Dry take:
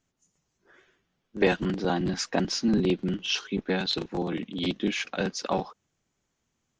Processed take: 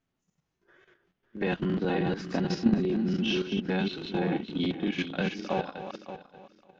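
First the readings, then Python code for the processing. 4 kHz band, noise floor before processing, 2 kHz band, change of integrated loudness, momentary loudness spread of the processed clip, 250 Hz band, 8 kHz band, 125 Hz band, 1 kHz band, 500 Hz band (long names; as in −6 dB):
−5.5 dB, −79 dBFS, −2.5 dB, −1.5 dB, 14 LU, 0.0 dB, below −10 dB, +0.5 dB, −2.5 dB, −2.0 dB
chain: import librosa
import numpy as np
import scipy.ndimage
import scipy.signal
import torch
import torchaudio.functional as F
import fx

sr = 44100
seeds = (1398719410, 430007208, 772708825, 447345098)

y = fx.reverse_delay_fb(x, sr, ms=285, feedback_pct=45, wet_db=-5.5)
y = scipy.signal.sosfilt(scipy.signal.butter(2, 3800.0, 'lowpass', fs=sr, output='sos'), y)
y = fx.hpss(y, sr, part='percussive', gain_db=-11)
y = fx.level_steps(y, sr, step_db=11)
y = y * librosa.db_to_amplitude(6.0)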